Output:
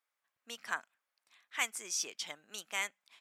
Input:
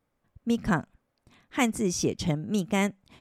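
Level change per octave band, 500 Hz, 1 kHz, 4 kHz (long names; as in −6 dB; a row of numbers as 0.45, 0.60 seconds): −21.0, −10.5, −2.5 decibels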